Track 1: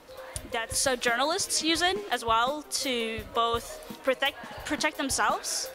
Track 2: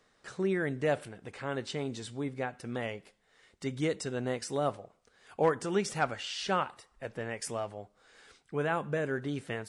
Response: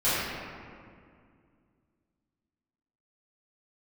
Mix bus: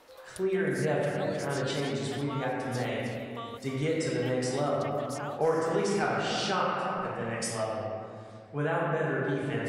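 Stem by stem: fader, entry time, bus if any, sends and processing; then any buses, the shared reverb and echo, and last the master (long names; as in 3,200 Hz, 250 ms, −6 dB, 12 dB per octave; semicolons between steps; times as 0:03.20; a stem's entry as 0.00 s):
−3.0 dB, 0.00 s, no send, echo send −20.5 dB, bass and treble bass −9 dB, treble −1 dB; automatic ducking −12 dB, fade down 0.80 s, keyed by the second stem
−2.0 dB, 0.00 s, send −7.5 dB, no echo send, multiband upward and downward expander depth 40%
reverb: on, RT60 2.2 s, pre-delay 3 ms
echo: single-tap delay 312 ms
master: downward compressor 2.5 to 1, threshold −27 dBFS, peak gain reduction 10 dB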